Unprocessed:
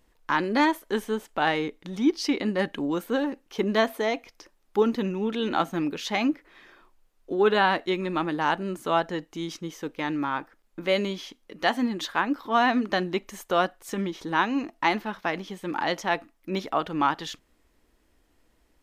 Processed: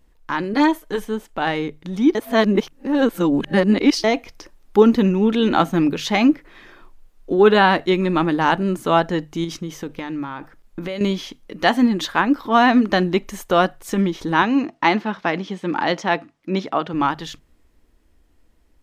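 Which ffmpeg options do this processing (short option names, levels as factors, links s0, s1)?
-filter_complex "[0:a]asettb=1/sr,asplit=3[s0][s1][s2];[s0]atrim=end=0.534[s3];[s1]atrim=start=0.53:end=1.05,asetpts=PTS-STARTPTS,afade=t=in:d=0.004:c=qsin,afade=t=out:st=0.516:d=0.004:c=qsin,aecho=1:1:6.5:0.76,atrim=end_sample=22932[s4];[s2]atrim=start=1.046[s5];[s3][s4]acrossfade=d=0.004:c1=hsin:c2=qsin[s6];[s6][s5]acrossfade=d=0.004:c1=qsin:c2=hsin,asettb=1/sr,asplit=3[s7][s8][s9];[s7]atrim=end=9.444[s10];[s8]atrim=start=9.44:end=11.01,asetpts=PTS-STARTPTS,afade=t=in:d=0.004:c=qsin,afade=t=out:st=1.566:d=0.004:c=qsin,acompressor=threshold=0.0224:ratio=6:attack=3.2:release=140:knee=1:detection=peak[s11];[s9]atrim=start=11.006[s12];[s10][s11]acrossfade=d=0.004:c1=hsin:c2=qsin[s13];[s13][s12]acrossfade=d=0.004:c1=qsin:c2=hsin,asettb=1/sr,asplit=3[s14][s15][s16];[s14]atrim=end=14.424[s17];[s15]atrim=start=14.42:end=16.94,asetpts=PTS-STARTPTS,afade=t=in:d=0.004:c=qsin,afade=t=out:st=2.516:d=0.004:c=qsin,highpass=140,lowpass=6300[s18];[s16]atrim=start=16.936[s19];[s17][s18]acrossfade=d=0.004:c1=hsin:c2=qsin[s20];[s20][s19]acrossfade=d=0.004:c1=qsin:c2=hsin,asplit=3[s21][s22][s23];[s21]atrim=end=2.152[s24];[s22]atrim=start=2.148:end=4.042,asetpts=PTS-STARTPTS,areverse[s25];[s23]atrim=start=4.038[s26];[s24][s25]acrossfade=d=0.004:c1=hsin:c2=hsin[s27];[s27][s26]acrossfade=d=0.004:c1=hsin:c2=hsin,dynaudnorm=f=140:g=31:m=2.82,lowshelf=f=190:g=10.5,bandreject=f=50:t=h:w=6,bandreject=f=100:t=h:w=6,bandreject=f=150:t=h:w=6"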